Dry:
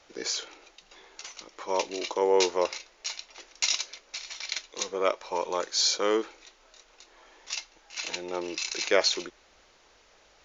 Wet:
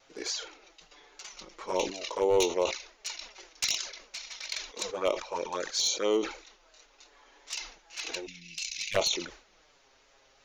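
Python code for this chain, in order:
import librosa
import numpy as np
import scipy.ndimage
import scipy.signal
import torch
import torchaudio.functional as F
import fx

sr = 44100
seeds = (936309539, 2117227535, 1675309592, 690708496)

y = np.minimum(x, 2.0 * 10.0 ** (-16.5 / 20.0) - x)
y = fx.low_shelf(y, sr, hz=170.0, db=9.0, at=(1.32, 1.85))
y = fx.ellip_bandstop(y, sr, low_hz=200.0, high_hz=2300.0, order=3, stop_db=40, at=(8.25, 8.94), fade=0.02)
y = fx.env_flanger(y, sr, rest_ms=7.9, full_db=-22.5)
y = fx.vibrato(y, sr, rate_hz=2.7, depth_cents=31.0)
y = fx.sustainer(y, sr, db_per_s=120.0)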